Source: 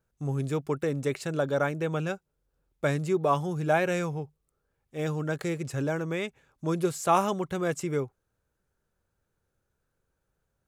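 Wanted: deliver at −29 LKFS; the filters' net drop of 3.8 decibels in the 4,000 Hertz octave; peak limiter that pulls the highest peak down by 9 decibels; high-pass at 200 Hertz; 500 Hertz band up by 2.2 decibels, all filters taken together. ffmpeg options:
ffmpeg -i in.wav -af "highpass=200,equalizer=frequency=500:width_type=o:gain=3,equalizer=frequency=4000:width_type=o:gain=-5,volume=2.5dB,alimiter=limit=-17dB:level=0:latency=1" out.wav

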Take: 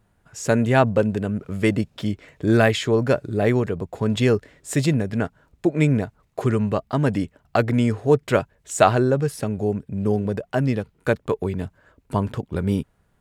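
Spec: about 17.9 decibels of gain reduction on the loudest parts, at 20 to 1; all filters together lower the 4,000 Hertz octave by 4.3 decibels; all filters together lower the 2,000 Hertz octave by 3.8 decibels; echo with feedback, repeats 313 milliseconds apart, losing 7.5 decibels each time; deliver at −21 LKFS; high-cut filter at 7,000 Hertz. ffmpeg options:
ffmpeg -i in.wav -af "lowpass=7000,equalizer=frequency=2000:width_type=o:gain=-4.5,equalizer=frequency=4000:width_type=o:gain=-3.5,acompressor=threshold=-28dB:ratio=20,aecho=1:1:313|626|939|1252|1565:0.422|0.177|0.0744|0.0312|0.0131,volume=12.5dB" out.wav

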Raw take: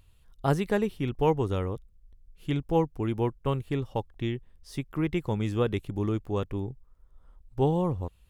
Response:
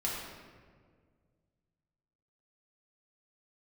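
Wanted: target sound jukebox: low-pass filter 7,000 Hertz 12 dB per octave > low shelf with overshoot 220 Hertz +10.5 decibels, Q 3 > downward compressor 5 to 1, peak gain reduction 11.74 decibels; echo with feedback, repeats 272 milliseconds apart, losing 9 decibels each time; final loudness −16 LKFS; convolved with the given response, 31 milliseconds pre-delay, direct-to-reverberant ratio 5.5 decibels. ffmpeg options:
-filter_complex "[0:a]aecho=1:1:272|544|816|1088:0.355|0.124|0.0435|0.0152,asplit=2[link_01][link_02];[1:a]atrim=start_sample=2205,adelay=31[link_03];[link_02][link_03]afir=irnorm=-1:irlink=0,volume=-10.5dB[link_04];[link_01][link_04]amix=inputs=2:normalize=0,lowpass=7000,lowshelf=frequency=220:width_type=q:width=3:gain=10.5,acompressor=threshold=-19dB:ratio=5,volume=8dB"

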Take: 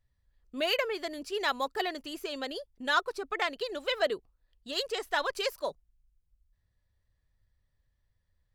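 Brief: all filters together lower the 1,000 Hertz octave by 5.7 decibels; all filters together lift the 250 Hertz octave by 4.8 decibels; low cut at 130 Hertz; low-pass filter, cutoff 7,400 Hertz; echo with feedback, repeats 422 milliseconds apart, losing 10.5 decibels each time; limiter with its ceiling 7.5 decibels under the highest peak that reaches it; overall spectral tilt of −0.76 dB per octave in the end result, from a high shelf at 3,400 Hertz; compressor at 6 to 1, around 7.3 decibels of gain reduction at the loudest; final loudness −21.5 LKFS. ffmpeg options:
ffmpeg -i in.wav -af "highpass=130,lowpass=7400,equalizer=frequency=250:width_type=o:gain=7,equalizer=frequency=1000:width_type=o:gain=-7.5,highshelf=frequency=3400:gain=-8,acompressor=threshold=-34dB:ratio=6,alimiter=level_in=7.5dB:limit=-24dB:level=0:latency=1,volume=-7.5dB,aecho=1:1:422|844|1266:0.299|0.0896|0.0269,volume=19.5dB" out.wav

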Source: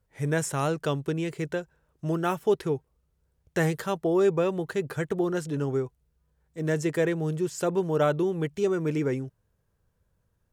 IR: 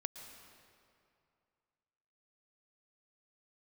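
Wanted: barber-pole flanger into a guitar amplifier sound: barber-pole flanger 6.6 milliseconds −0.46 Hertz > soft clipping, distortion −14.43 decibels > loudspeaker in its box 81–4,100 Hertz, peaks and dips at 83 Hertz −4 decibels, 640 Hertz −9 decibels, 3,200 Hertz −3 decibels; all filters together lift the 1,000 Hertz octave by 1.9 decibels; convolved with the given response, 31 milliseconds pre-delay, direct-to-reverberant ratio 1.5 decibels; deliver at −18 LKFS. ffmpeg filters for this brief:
-filter_complex "[0:a]equalizer=frequency=1000:width_type=o:gain=4.5,asplit=2[link_01][link_02];[1:a]atrim=start_sample=2205,adelay=31[link_03];[link_02][link_03]afir=irnorm=-1:irlink=0,volume=0dB[link_04];[link_01][link_04]amix=inputs=2:normalize=0,asplit=2[link_05][link_06];[link_06]adelay=6.6,afreqshift=-0.46[link_07];[link_05][link_07]amix=inputs=2:normalize=1,asoftclip=threshold=-20.5dB,highpass=81,equalizer=frequency=83:width_type=q:width=4:gain=-4,equalizer=frequency=640:width_type=q:width=4:gain=-9,equalizer=frequency=3200:width_type=q:width=4:gain=-3,lowpass=frequency=4100:width=0.5412,lowpass=frequency=4100:width=1.3066,volume=13.5dB"

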